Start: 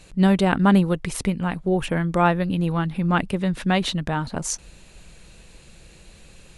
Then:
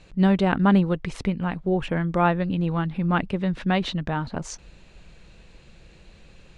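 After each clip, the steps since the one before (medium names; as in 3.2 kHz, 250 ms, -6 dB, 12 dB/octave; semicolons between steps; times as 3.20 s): distance through air 120 m; trim -1.5 dB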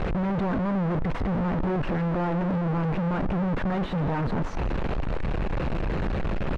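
one-bit comparator; low-pass 1.3 kHz 12 dB/octave; delay 175 ms -17.5 dB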